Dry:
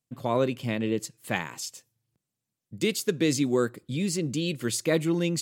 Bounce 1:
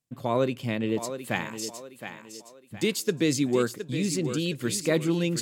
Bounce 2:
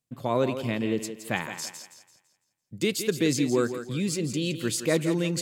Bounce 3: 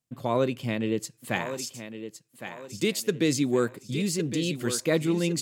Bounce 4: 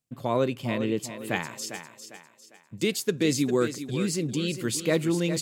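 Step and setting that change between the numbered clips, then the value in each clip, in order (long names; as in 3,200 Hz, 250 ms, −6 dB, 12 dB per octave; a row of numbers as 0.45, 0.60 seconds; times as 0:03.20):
feedback echo with a high-pass in the loop, delay time: 716, 168, 1,111, 401 milliseconds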